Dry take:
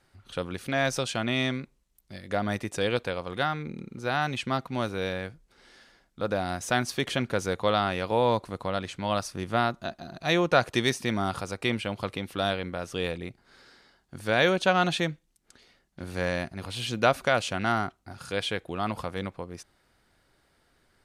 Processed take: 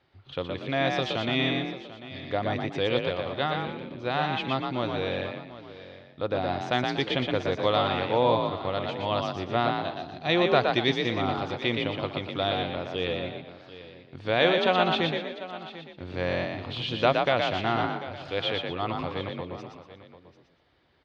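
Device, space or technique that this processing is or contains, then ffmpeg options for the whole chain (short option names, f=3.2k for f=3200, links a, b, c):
frequency-shifting delay pedal into a guitar cabinet: -filter_complex "[0:a]lowshelf=f=200:g=4.5,aecho=1:1:743:0.168,asplit=5[a][b][c][d][e];[b]adelay=119,afreqshift=41,volume=-4dB[f];[c]adelay=238,afreqshift=82,volume=-13.4dB[g];[d]adelay=357,afreqshift=123,volume=-22.7dB[h];[e]adelay=476,afreqshift=164,volume=-32.1dB[i];[a][f][g][h][i]amix=inputs=5:normalize=0,highpass=89,equalizer=f=120:t=q:w=4:g=-3,equalizer=f=200:t=q:w=4:g=-10,equalizer=f=1.5k:t=q:w=4:g=-6,equalizer=f=3.4k:t=q:w=4:g=3,lowpass=f=4.1k:w=0.5412,lowpass=f=4.1k:w=1.3066"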